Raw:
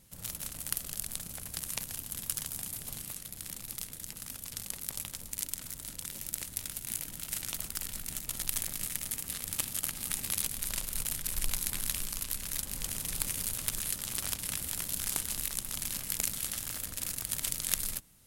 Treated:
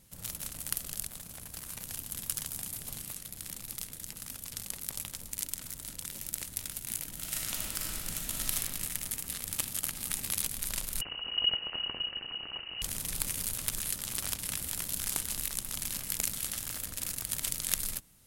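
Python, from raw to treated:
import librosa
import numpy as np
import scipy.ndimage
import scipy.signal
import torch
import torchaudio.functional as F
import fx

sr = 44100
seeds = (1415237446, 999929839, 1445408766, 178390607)

y = fx.tube_stage(x, sr, drive_db=32.0, bias=0.6, at=(1.07, 1.84))
y = fx.reverb_throw(y, sr, start_s=7.13, length_s=1.42, rt60_s=2.2, drr_db=-1.5)
y = fx.freq_invert(y, sr, carrier_hz=2900, at=(11.01, 12.82))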